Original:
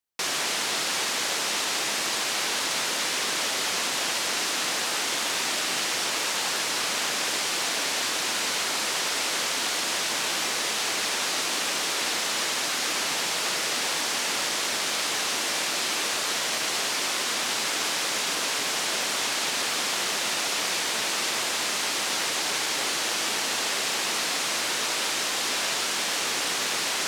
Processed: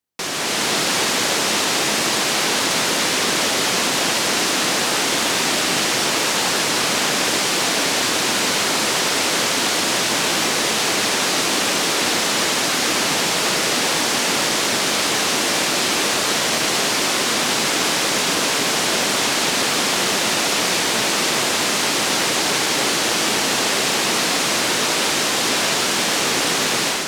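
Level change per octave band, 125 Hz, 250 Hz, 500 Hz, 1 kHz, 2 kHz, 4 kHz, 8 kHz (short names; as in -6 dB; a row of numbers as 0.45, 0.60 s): +16.0, +14.5, +11.5, +9.0, +7.5, +7.0, +7.0 dB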